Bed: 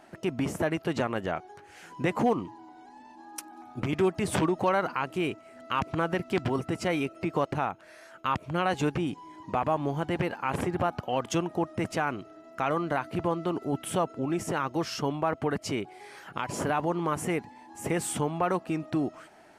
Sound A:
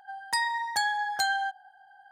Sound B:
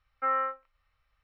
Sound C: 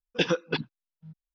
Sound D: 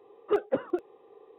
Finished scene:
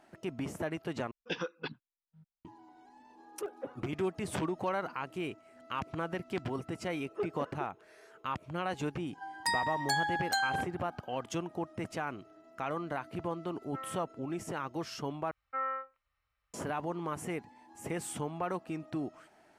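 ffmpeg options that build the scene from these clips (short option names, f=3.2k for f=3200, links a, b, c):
-filter_complex "[4:a]asplit=2[a][b];[2:a]asplit=2[c][d];[0:a]volume=-8dB[e];[3:a]equalizer=f=1.2k:w=0.78:g=5.5[f];[b]aecho=1:1:4.7:0.59[g];[d]highpass=41[h];[e]asplit=3[i][j][k];[i]atrim=end=1.114[l];[f]atrim=end=1.34,asetpts=PTS-STARTPTS,volume=-13dB[m];[j]atrim=start=2.446:end=15.314[n];[h]atrim=end=1.23,asetpts=PTS-STARTPTS,volume=-7dB[o];[k]atrim=start=16.536[p];[a]atrim=end=1.38,asetpts=PTS-STARTPTS,volume=-13.5dB,afade=t=in:d=0.004:c=hsin,afade=t=out:st=1.376:d=0.004:c=hsin,adelay=3100[q];[g]atrim=end=1.38,asetpts=PTS-STARTPTS,volume=-13dB,afade=t=in:d=0.004:c=hsin,afade=t=out:st=1.376:d=0.004:c=hsin,adelay=6870[r];[1:a]atrim=end=2.11,asetpts=PTS-STARTPTS,volume=-4dB,afade=t=in:d=0.004:c=hsin,afade=t=out:st=2.106:d=0.004:c=hsin,adelay=9130[s];[c]atrim=end=1.23,asetpts=PTS-STARTPTS,volume=-16dB,afade=t=in:d=0.004:c=hsin,afade=t=out:st=1.226:d=0.004:c=hsin,adelay=13520[t];[l][m]acrossfade=d=0.004:c1=hsin:c2=hsin[u];[u][n]acrossfade=d=0.004:c1=hsin:c2=hsin[v];[v][o]acrossfade=d=0.004:c1=hsin:c2=hsin[w];[w][p]acrossfade=d=0.004:c1=hsin:c2=hsin[x];[x][q][r][s][t]amix=inputs=5:normalize=0"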